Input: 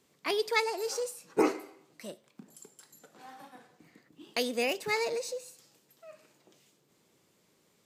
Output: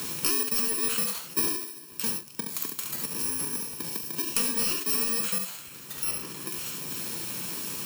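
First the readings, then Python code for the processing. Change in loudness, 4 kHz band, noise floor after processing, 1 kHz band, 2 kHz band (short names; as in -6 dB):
+4.0 dB, +6.0 dB, -45 dBFS, -3.0 dB, -1.0 dB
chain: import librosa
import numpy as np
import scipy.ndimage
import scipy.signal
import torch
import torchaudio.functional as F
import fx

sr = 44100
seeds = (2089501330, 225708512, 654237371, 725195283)

p1 = fx.bit_reversed(x, sr, seeds[0], block=64)
p2 = fx.low_shelf(p1, sr, hz=470.0, db=-3.0)
p3 = np.clip(10.0 ** (28.0 / 20.0) * p2, -1.0, 1.0) / 10.0 ** (28.0 / 20.0)
p4 = p3 + fx.echo_multitap(p3, sr, ms=(42, 69), db=(-11.0, -5.5), dry=0)
p5 = fx.buffer_crackle(p4, sr, first_s=0.41, period_s=0.15, block=512, kind='repeat')
p6 = fx.band_squash(p5, sr, depth_pct=100)
y = p6 * librosa.db_to_amplitude(6.0)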